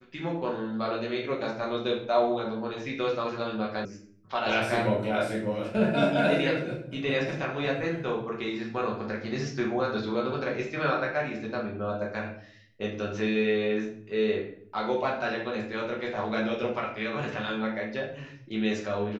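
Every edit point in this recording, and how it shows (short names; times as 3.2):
3.85 sound cut off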